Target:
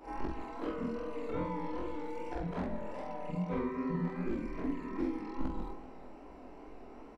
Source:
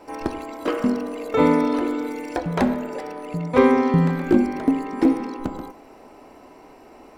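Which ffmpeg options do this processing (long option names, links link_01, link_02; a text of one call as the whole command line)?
ffmpeg -i in.wav -filter_complex "[0:a]afftfilt=real='re':imag='-im':win_size=4096:overlap=0.75,equalizer=frequency=100:width_type=o:width=0.9:gain=-11,acrossover=split=230[link_01][link_02];[link_01]alimiter=level_in=4.5dB:limit=-24dB:level=0:latency=1:release=304,volume=-4.5dB[link_03];[link_03][link_02]amix=inputs=2:normalize=0,acrossover=split=180|1400[link_04][link_05][link_06];[link_04]acompressor=threshold=-44dB:ratio=4[link_07];[link_05]acompressor=threshold=-38dB:ratio=4[link_08];[link_06]acompressor=threshold=-49dB:ratio=4[link_09];[link_07][link_08][link_09]amix=inputs=3:normalize=0,flanger=delay=18:depth=7.8:speed=2.5,aemphasis=mode=reproduction:type=bsi,aecho=1:1:384:0.141" out.wav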